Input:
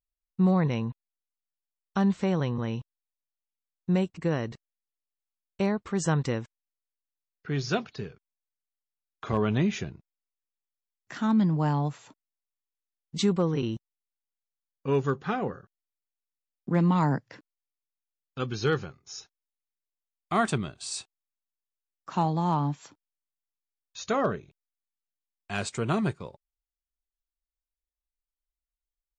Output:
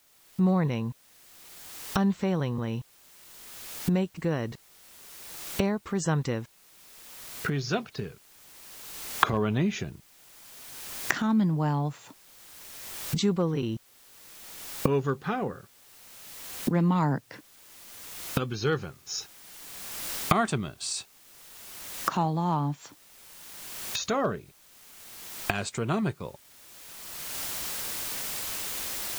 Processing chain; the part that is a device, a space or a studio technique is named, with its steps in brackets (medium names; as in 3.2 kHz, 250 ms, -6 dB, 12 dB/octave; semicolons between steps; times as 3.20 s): cheap recorder with automatic gain (white noise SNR 32 dB; recorder AGC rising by 23 dB/s); trim -1 dB